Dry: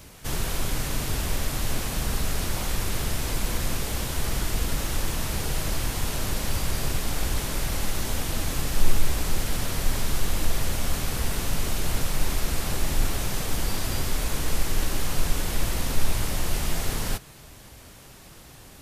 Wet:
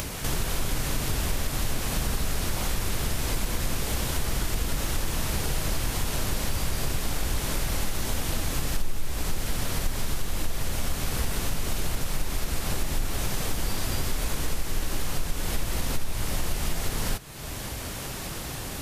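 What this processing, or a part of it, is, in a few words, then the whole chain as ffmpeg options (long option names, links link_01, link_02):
upward and downward compression: -af "acompressor=mode=upward:threshold=-24dB:ratio=2.5,acompressor=threshold=-23dB:ratio=4,volume=1.5dB"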